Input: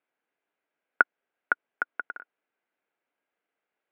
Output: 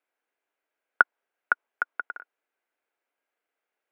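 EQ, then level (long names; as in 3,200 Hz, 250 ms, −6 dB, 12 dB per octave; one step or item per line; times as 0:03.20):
high-pass filter 320 Hz 12 dB per octave
dynamic equaliser 980 Hz, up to +6 dB, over −42 dBFS, Q 1.8
0.0 dB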